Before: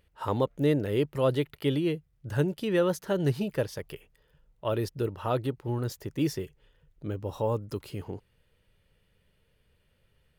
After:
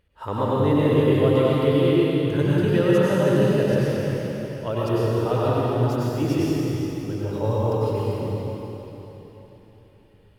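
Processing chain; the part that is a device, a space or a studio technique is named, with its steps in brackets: swimming-pool hall (reverb RT60 3.8 s, pre-delay 88 ms, DRR -8 dB; high shelf 4200 Hz -6 dB)

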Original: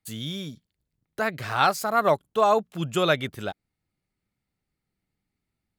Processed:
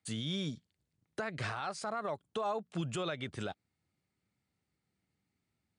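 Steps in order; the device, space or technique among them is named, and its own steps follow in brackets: dynamic EQ 7300 Hz, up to -5 dB, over -48 dBFS, Q 1.6; podcast mastering chain (HPF 67 Hz 24 dB/oct; compressor 4:1, threshold -29 dBFS, peak gain reduction 11.5 dB; limiter -26.5 dBFS, peak gain reduction 11 dB; MP3 96 kbps 22050 Hz)

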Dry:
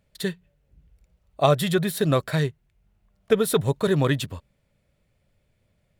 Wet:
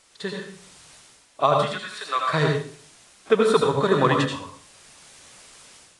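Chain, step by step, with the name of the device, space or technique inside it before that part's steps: 1.65–2.29 HPF 1300 Hz 12 dB/oct; filmed off a television (BPF 210–6300 Hz; bell 1100 Hz +10.5 dB 0.58 oct; reverb RT60 0.45 s, pre-delay 73 ms, DRR 2 dB; white noise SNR 27 dB; AGC gain up to 10.5 dB; gain -4 dB; AAC 48 kbps 22050 Hz)

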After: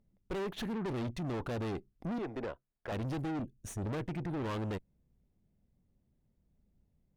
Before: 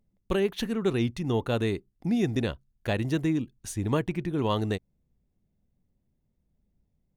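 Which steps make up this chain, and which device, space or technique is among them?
2.18–2.92 three-band isolator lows -20 dB, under 360 Hz, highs -17 dB, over 2100 Hz; 3.43–3.81 spectral gain 710–5500 Hz -12 dB; tube preamp driven hard (tube stage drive 37 dB, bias 0.55; high shelf 3500 Hz -8 dB); gain +3 dB

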